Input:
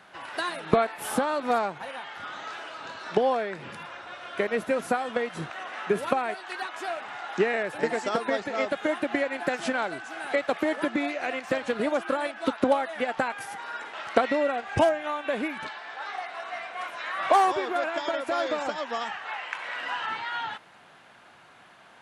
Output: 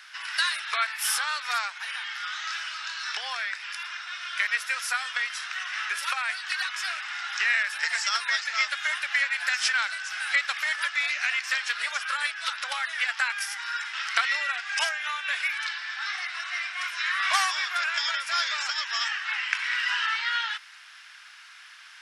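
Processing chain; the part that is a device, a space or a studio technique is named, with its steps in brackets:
headphones lying on a table (high-pass filter 1,500 Hz 24 dB per octave; parametric band 5,300 Hz +11 dB 0.31 octaves)
level +8.5 dB

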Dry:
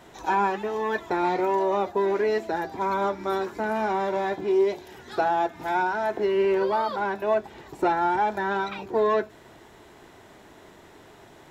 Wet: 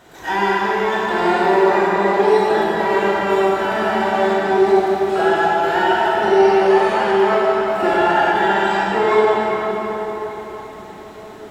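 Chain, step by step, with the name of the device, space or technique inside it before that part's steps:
shimmer-style reverb (pitch-shifted copies added +12 semitones −6 dB; convolution reverb RT60 5.1 s, pre-delay 22 ms, DRR −6.5 dB)

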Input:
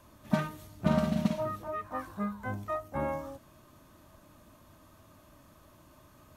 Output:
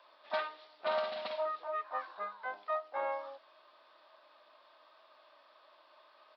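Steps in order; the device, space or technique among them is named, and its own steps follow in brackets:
musical greeting card (downsampling to 11,025 Hz; high-pass filter 550 Hz 24 dB per octave; parametric band 3,700 Hz +4 dB 0.38 octaves)

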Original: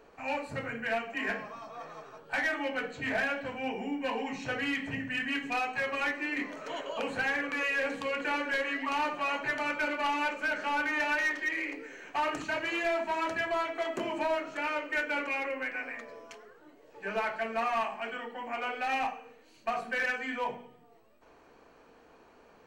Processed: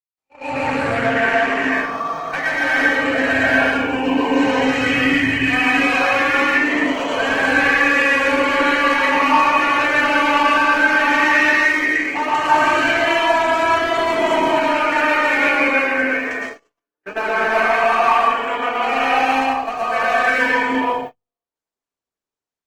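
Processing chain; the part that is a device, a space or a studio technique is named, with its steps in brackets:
mains-hum notches 50/100/150/200/250 Hz
dynamic equaliser 220 Hz, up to −4 dB, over −56 dBFS, Q 6.1
reverb whose tail is shaped and stops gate 380 ms rising, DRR −5 dB
speakerphone in a meeting room (convolution reverb RT60 0.75 s, pre-delay 111 ms, DRR −2.5 dB; automatic gain control gain up to 8.5 dB; noise gate −26 dBFS, range −53 dB; level −1 dB; Opus 16 kbit/s 48,000 Hz)

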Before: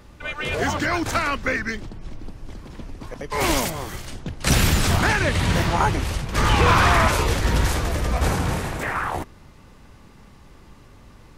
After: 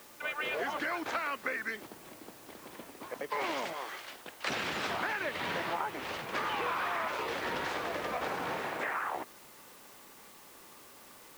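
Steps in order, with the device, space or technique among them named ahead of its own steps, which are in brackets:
0:03.73–0:04.48: high-pass filter 750 Hz 6 dB per octave
baby monitor (band-pass filter 400–3,300 Hz; downward compressor, threshold −29 dBFS, peak gain reduction 13.5 dB; white noise bed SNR 19 dB)
level −2.5 dB

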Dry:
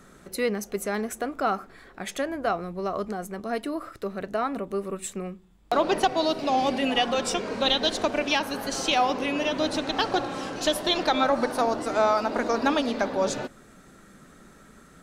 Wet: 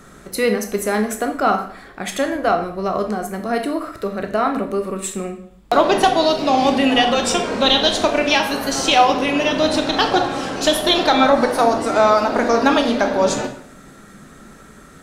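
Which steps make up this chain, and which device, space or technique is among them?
bathroom (convolution reverb RT60 0.60 s, pre-delay 14 ms, DRR 5 dB)
level +7.5 dB

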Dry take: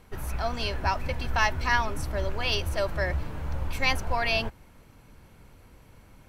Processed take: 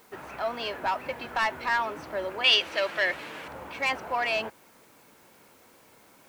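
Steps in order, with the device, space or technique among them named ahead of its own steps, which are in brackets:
tape answering machine (band-pass filter 320–3,000 Hz; soft clipping −21 dBFS, distortion −14 dB; tape wow and flutter; white noise bed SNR 29 dB)
0:02.44–0:03.48: meter weighting curve D
level +2 dB

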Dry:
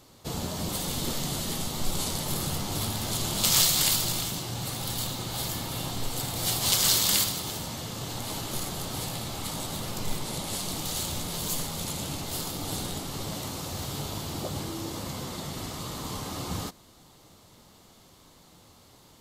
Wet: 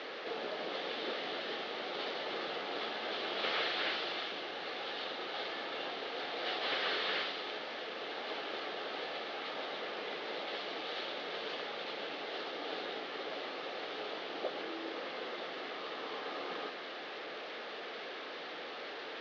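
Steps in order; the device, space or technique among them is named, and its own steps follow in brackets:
digital answering machine (band-pass filter 360–3,300 Hz; linear delta modulator 32 kbit/s, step −36.5 dBFS; loudspeaker in its box 360–3,900 Hz, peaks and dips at 450 Hz +5 dB, 970 Hz −9 dB, 1,700 Hz +4 dB)

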